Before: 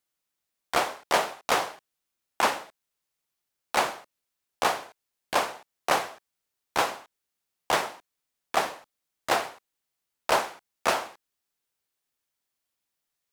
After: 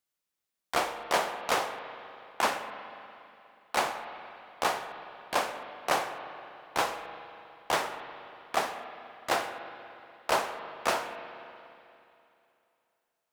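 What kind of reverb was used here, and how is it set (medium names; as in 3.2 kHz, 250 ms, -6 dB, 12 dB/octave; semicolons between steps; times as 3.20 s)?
spring tank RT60 2.8 s, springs 40/59 ms, chirp 60 ms, DRR 8 dB; trim -3.5 dB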